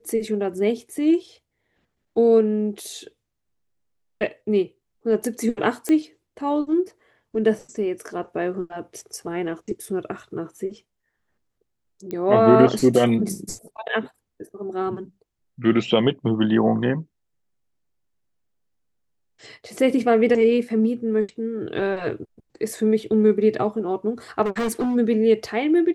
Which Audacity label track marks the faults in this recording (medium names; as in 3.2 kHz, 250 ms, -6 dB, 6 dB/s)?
5.890000	5.890000	pop -12 dBFS
12.110000	12.110000	pop -18 dBFS
24.450000	24.960000	clipped -20 dBFS